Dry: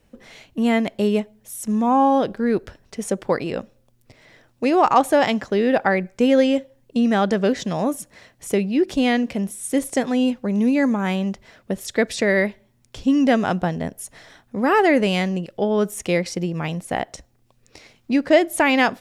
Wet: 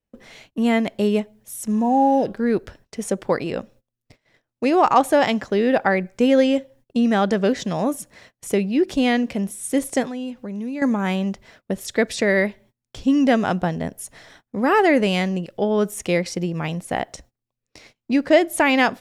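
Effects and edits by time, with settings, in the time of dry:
1.79–2.23 spectral repair 950–4900 Hz
10.07–10.82 compressor 2:1, threshold -34 dBFS
whole clip: gate -48 dBFS, range -24 dB

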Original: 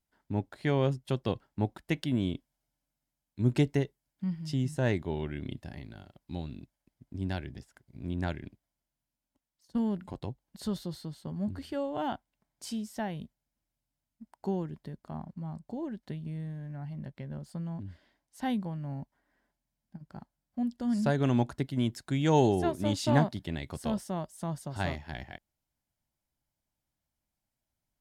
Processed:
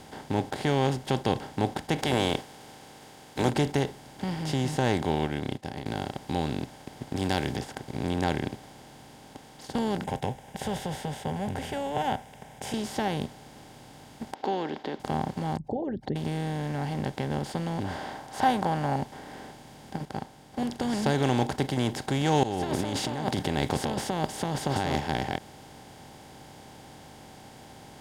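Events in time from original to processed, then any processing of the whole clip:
1.98–3.48 spectral limiter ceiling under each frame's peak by 24 dB
5.12–5.86 upward expander 2.5:1, over -56 dBFS
7.16–7.57 high shelf 2600 Hz +12 dB
10.04–12.74 fixed phaser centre 1200 Hz, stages 6
14.34–15 elliptic band-pass 300–3900 Hz
15.57–16.16 formant sharpening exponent 3
17.84–18.96 band shelf 1000 Hz +15 dB
20.05–20.7 upward expander, over -48 dBFS
22.43–25 negative-ratio compressor -38 dBFS
whole clip: per-bin compression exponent 0.4; gain -3 dB

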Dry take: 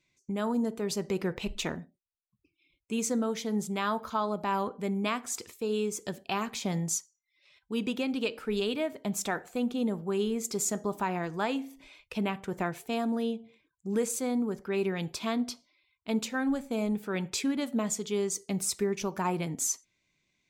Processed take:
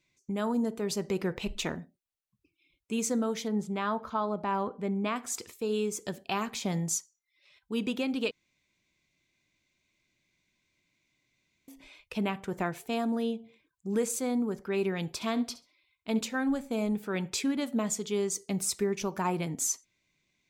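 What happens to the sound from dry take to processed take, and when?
3.48–5.16 LPF 2100 Hz 6 dB/oct
8.31–11.68 room tone
15.12–16.21 flutter echo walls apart 11.6 m, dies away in 0.26 s

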